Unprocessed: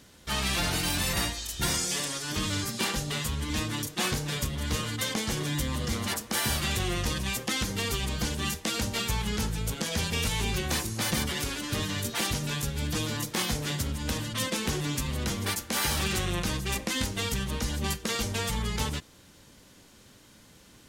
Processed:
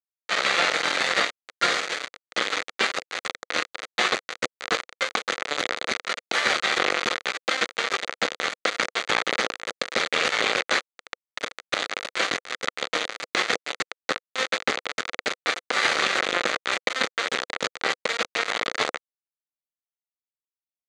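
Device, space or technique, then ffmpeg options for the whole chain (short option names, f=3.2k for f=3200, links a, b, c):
hand-held game console: -filter_complex "[0:a]asettb=1/sr,asplit=3[a][b][c];[a]atrim=end=10.824[d];[b]atrim=start=10.82:end=11.37,asetpts=PTS-STARTPTS,afade=t=in:d=0.004:c=qsin,afade=t=out:st=0.546:d=0.004:c=qsin,acrossover=split=430 3700:gain=0.126 1 0.0708[e][f][g];[e][f][g]amix=inputs=3:normalize=0[h];[c]atrim=start=11.366[i];[d][h]acrossfade=d=0.004:c1=hsin:c2=qsin[j];[j][i]acrossfade=d=0.004:c1=qsin:c2=hsin,acrusher=bits=3:mix=0:aa=0.000001,highpass=450,equalizer=f=500:t=q:w=4:g=5,equalizer=f=940:t=q:w=4:g=-6,equalizer=f=1.3k:t=q:w=4:g=5,equalizer=f=2k:t=q:w=4:g=5,equalizer=f=2.9k:t=q:w=4:g=-4,equalizer=f=5.3k:t=q:w=4:g=-10,lowpass=f=5.4k:w=0.5412,lowpass=f=5.4k:w=1.3066,volume=9dB"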